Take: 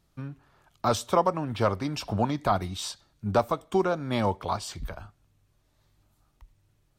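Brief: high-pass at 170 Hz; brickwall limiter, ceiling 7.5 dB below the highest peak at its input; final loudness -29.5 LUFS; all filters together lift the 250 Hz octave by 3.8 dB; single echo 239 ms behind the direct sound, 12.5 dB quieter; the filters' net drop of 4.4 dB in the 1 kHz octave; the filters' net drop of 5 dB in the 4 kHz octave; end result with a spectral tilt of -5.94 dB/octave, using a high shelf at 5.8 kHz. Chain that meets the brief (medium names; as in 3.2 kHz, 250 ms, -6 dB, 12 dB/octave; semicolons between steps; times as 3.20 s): high-pass 170 Hz; peaking EQ 250 Hz +6.5 dB; peaking EQ 1 kHz -6 dB; peaking EQ 4 kHz -4 dB; treble shelf 5.8 kHz -5 dB; peak limiter -19 dBFS; delay 239 ms -12.5 dB; trim +2 dB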